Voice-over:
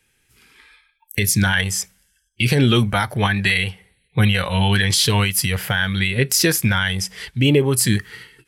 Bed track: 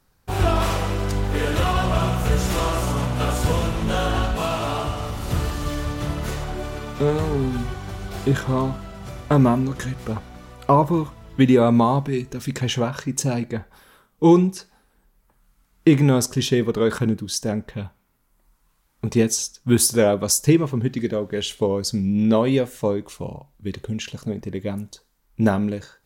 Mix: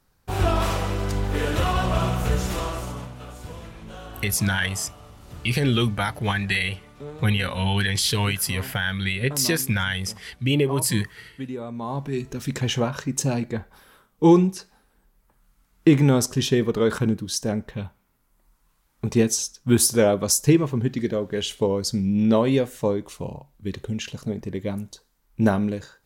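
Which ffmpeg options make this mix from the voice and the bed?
-filter_complex "[0:a]adelay=3050,volume=0.531[s0];[1:a]volume=5.31,afade=t=out:st=2.21:d=0.99:silence=0.16788,afade=t=in:st=11.79:d=0.5:silence=0.149624[s1];[s0][s1]amix=inputs=2:normalize=0"

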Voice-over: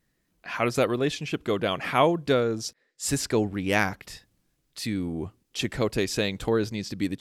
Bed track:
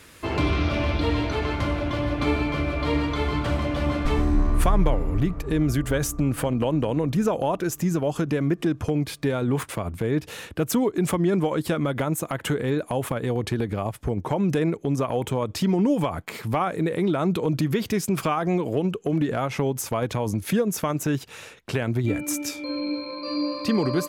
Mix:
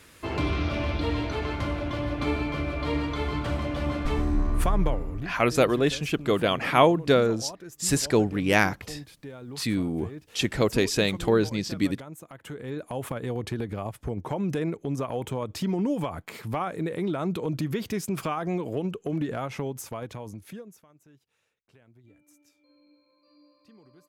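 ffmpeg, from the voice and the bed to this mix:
-filter_complex "[0:a]adelay=4800,volume=1.33[s0];[1:a]volume=2.37,afade=t=out:st=4.88:d=0.45:silence=0.223872,afade=t=in:st=12.41:d=0.68:silence=0.266073,afade=t=out:st=19.32:d=1.52:silence=0.0421697[s1];[s0][s1]amix=inputs=2:normalize=0"

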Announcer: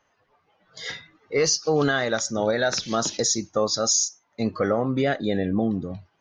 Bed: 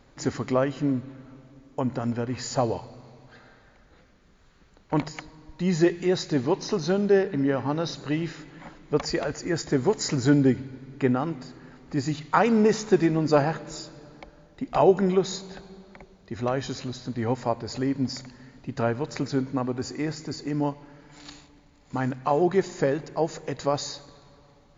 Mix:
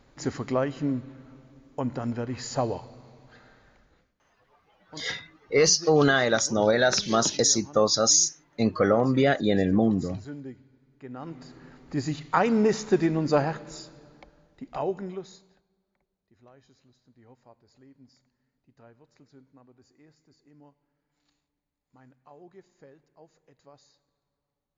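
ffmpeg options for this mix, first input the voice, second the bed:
-filter_complex "[0:a]adelay=4200,volume=1.19[s0];[1:a]volume=5.96,afade=t=out:st=3.73:d=0.42:silence=0.133352,afade=t=in:st=11.09:d=0.52:silence=0.125893,afade=t=out:st=13.28:d=2.36:silence=0.0473151[s1];[s0][s1]amix=inputs=2:normalize=0"

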